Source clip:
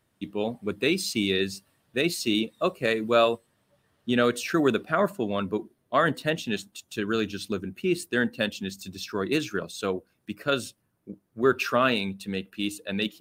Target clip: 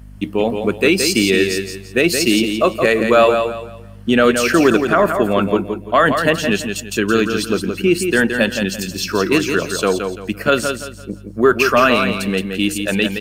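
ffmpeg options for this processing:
-filter_complex "[0:a]highpass=f=180:p=1,bandreject=f=3.7k:w=6.4,asplit=2[a][b];[b]acompressor=threshold=-34dB:ratio=6,volume=0dB[c];[a][c]amix=inputs=2:normalize=0,apsyclip=13.5dB,aeval=exprs='val(0)+0.0251*(sin(2*PI*50*n/s)+sin(2*PI*2*50*n/s)/2+sin(2*PI*3*50*n/s)/3+sin(2*PI*4*50*n/s)/4+sin(2*PI*5*50*n/s)/5)':c=same,asplit=2[d][e];[e]aecho=0:1:170|340|510|680:0.473|0.142|0.0426|0.0128[f];[d][f]amix=inputs=2:normalize=0,volume=-4dB"

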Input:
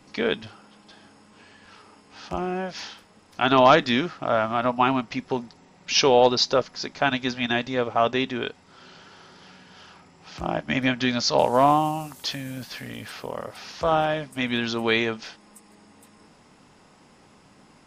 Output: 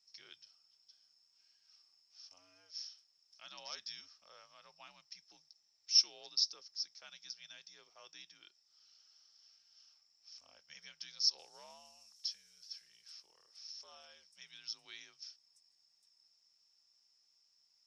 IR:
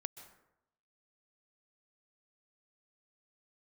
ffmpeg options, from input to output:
-af "bandpass=f=5.5k:t=q:w=18:csg=0,afreqshift=-80,volume=2dB"

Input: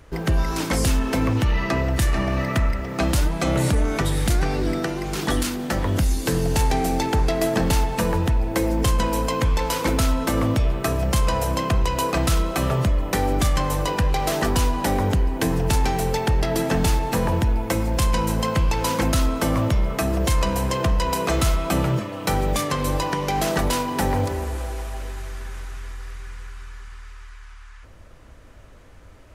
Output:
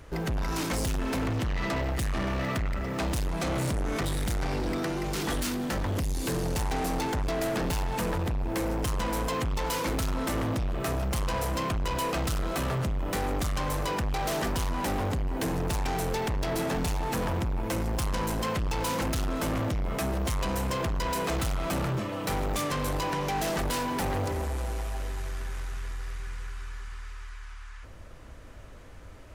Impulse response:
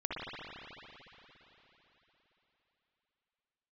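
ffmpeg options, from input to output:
-af "asoftclip=type=tanh:threshold=-26.5dB"

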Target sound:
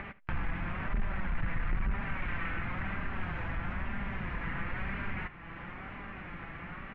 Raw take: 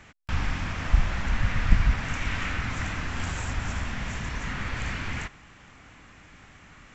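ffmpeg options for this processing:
-af "asoftclip=type=tanh:threshold=-21.5dB,flanger=delay=5:depth=1:regen=40:speed=1:shape=sinusoidal,acompressor=mode=upward:threshold=-30dB:ratio=2.5,lowpass=f=2.4k:w=0.5412,lowpass=f=2.4k:w=1.3066,aecho=1:1:74:0.112"

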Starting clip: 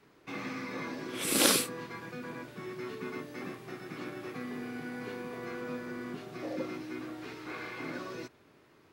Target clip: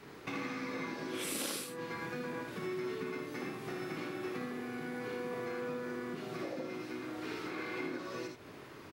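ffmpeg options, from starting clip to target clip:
-filter_complex "[0:a]asettb=1/sr,asplit=3[a][b][c];[a]atrim=end=7.444[d];[b]atrim=start=7.44:end=7.98,asetpts=PTS-STARTPTS,afade=t=in:d=0.004:c=qsin,afade=t=out:st=0.536:d=0.004:c=qsin,equalizer=f=330:w=1.5:g=5.5[e];[c]atrim=start=7.976[f];[d][e]acrossfade=d=0.004:c1=hsin:c2=qsin[g];[g][f]acrossfade=d=0.004:c1=qsin:c2=hsin,acompressor=threshold=-49dB:ratio=6,aecho=1:1:57|79:0.422|0.531,volume=9.5dB"

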